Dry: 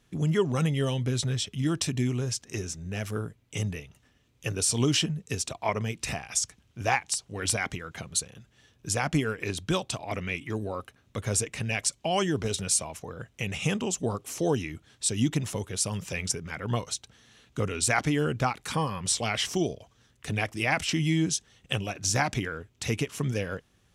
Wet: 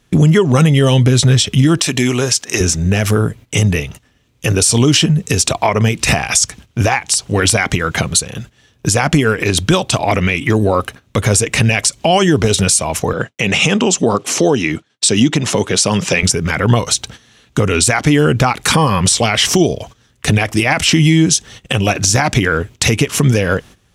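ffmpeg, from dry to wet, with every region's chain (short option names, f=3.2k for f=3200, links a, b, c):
-filter_complex "[0:a]asettb=1/sr,asplit=3[a][b][c];[a]atrim=end=1.794[d];[b]atrim=start=1.79:end=2.61,asetpts=PTS-STARTPTS,afade=t=in:d=0.004:c=qsin,afade=t=out:st=0.816:d=0.004:c=qsin,highpass=f=600:p=1,acompressor=mode=upward:threshold=-46dB:ratio=2.5:attack=3.2:release=140:knee=2.83:detection=peak[e];[c]atrim=start=2.606[f];[d][e]acrossfade=d=0.004:c1=hsin:c2=qsin[g];[g][f]acrossfade=d=0.004:c1=qsin:c2=hsin,asettb=1/sr,asplit=3[h][i][j];[h]atrim=end=13.134[k];[i]atrim=start=13.13:end=16.23,asetpts=PTS-STARTPTS,afade=t=in:d=0.004:c=qsin,afade=t=out:st=3.096:d=0.004:c=qsin,highpass=170,lowpass=7k,agate=range=-33dB:threshold=-50dB:ratio=3:release=100:detection=peak[l];[j]atrim=start=16.226[m];[k][l]acrossfade=d=0.004:c1=hsin:c2=qsin[n];[n][m]acrossfade=d=0.004:c1=qsin:c2=hsin,agate=range=-14dB:threshold=-53dB:ratio=16:detection=peak,acompressor=threshold=-30dB:ratio=6,alimiter=level_in=24dB:limit=-1dB:release=50:level=0:latency=1,volume=-1dB"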